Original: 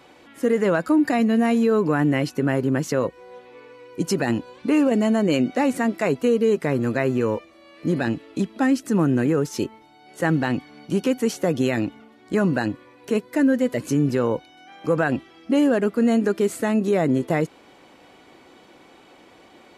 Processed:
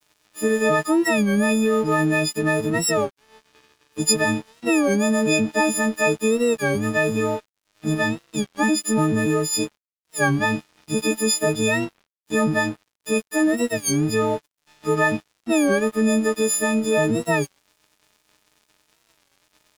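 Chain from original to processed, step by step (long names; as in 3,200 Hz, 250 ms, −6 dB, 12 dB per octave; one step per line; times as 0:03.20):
every partial snapped to a pitch grid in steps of 6 semitones
dead-zone distortion −39 dBFS
wow of a warped record 33 1/3 rpm, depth 160 cents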